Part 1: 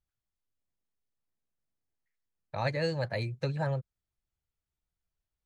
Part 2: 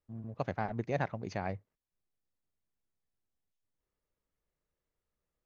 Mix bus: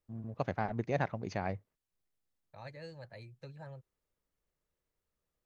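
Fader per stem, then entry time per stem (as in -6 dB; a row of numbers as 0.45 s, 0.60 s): -17.0 dB, +0.5 dB; 0.00 s, 0.00 s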